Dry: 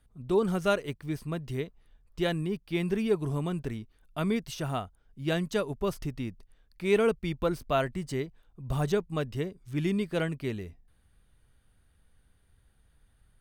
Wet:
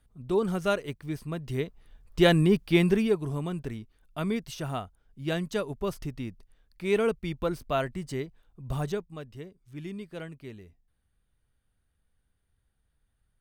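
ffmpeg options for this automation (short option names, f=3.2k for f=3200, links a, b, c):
-af "volume=10.5dB,afade=t=in:st=1.37:d=1.21:silence=0.281838,afade=t=out:st=2.58:d=0.6:silence=0.266073,afade=t=out:st=8.73:d=0.43:silence=0.354813"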